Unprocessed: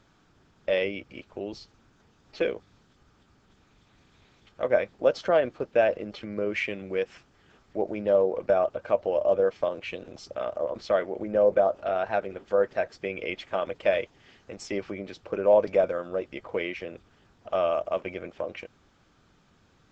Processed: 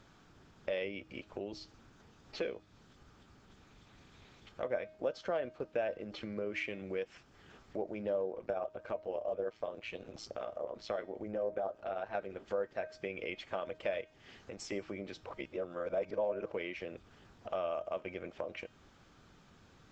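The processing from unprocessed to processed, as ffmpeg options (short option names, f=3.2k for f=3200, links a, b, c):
-filter_complex "[0:a]asettb=1/sr,asplit=3[a][b][c];[a]atrim=end=8.314[d];[b]atrim=start=8.31:end=12.15,asetpts=PTS-STARTPTS,afade=t=in:d=0.004:c=qsin,afade=t=out:st=3.836:d=0.004:c=qsin,tremolo=f=110:d=0.667[e];[c]atrim=start=12.146[f];[d][e]acrossfade=d=0.004:c1=hsin:c2=qsin[g];[g][f]acrossfade=d=0.004:c1=qsin:c2=hsin,asettb=1/sr,asplit=3[h][i][j];[h]atrim=end=14.014[k];[i]atrim=start=14.01:end=14.72,asetpts=PTS-STARTPTS,afade=t=in:d=0.004:c=qsin,afade=t=out:st=0.706:d=0.004:c=qsin,acompressor=threshold=-48dB:ratio=1.5:attack=3.2:release=140:knee=1:detection=peak[l];[j]atrim=start=14.716[m];[k][l]acrossfade=d=0.004:c1=hsin:c2=qsin[n];[n][m]acrossfade=d=0.004:c1=qsin:c2=hsin,asplit=3[o][p][q];[o]atrim=end=15.262[r];[p]atrim=start=15.258:end=16.522,asetpts=PTS-STARTPTS,areverse[s];[q]atrim=start=16.518[t];[r][s]acrossfade=d=0.004:c1=hsin:c2=hsin[u];[u][t]acrossfade=d=0.004:c1=hsin:c2=hsin,acompressor=threshold=-44dB:ratio=2,bandreject=f=312.7:t=h:w=4,bandreject=f=625.4:t=h:w=4,bandreject=f=938.1:t=h:w=4,bandreject=f=1.2508k:t=h:w=4,bandreject=f=1.5635k:t=h:w=4,bandreject=f=1.8762k:t=h:w=4,bandreject=f=2.1889k:t=h:w=4,bandreject=f=2.5016k:t=h:w=4,bandreject=f=2.8143k:t=h:w=4,bandreject=f=3.127k:t=h:w=4,bandreject=f=3.4397k:t=h:w=4,bandreject=f=3.7524k:t=h:w=4,bandreject=f=4.0651k:t=h:w=4,bandreject=f=4.3778k:t=h:w=4,bandreject=f=4.6905k:t=h:w=4,bandreject=f=5.0032k:t=h:w=4,bandreject=f=5.3159k:t=h:w=4,bandreject=f=5.6286k:t=h:w=4,bandreject=f=5.9413k:t=h:w=4,bandreject=f=6.254k:t=h:w=4,bandreject=f=6.5667k:t=h:w=4,bandreject=f=6.8794k:t=h:w=4,bandreject=f=7.1921k:t=h:w=4,bandreject=f=7.5048k:t=h:w=4,bandreject=f=7.8175k:t=h:w=4,bandreject=f=8.1302k:t=h:w=4,bandreject=f=8.4429k:t=h:w=4,bandreject=f=8.7556k:t=h:w=4,bandreject=f=9.0683k:t=h:w=4,volume=1dB"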